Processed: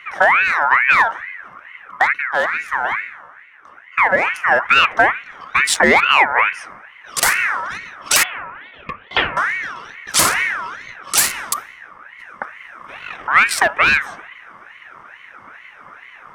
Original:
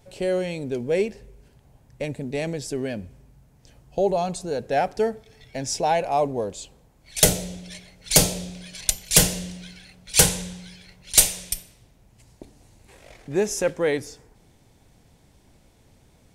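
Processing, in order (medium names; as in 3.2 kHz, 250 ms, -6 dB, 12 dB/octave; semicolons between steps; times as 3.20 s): local Wiener filter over 15 samples; in parallel at -8.5 dB: saturation -23 dBFS, distortion -5 dB; 2.13–4.44 s: on the sum: feedback comb 70 Hz, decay 1.4 s, harmonics all, mix 60%; 8.23–9.37 s: four-pole ladder low-pass 1.4 kHz, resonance 80%; small resonant body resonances 570/960 Hz, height 13 dB, ringing for 25 ms; compression 6:1, threshold -16 dBFS, peak gain reduction 9.5 dB; peaking EQ 520 Hz -9.5 dB 0.58 oct; loudness maximiser +15.5 dB; ring modulator with a swept carrier 1.6 kHz, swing 30%, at 2.3 Hz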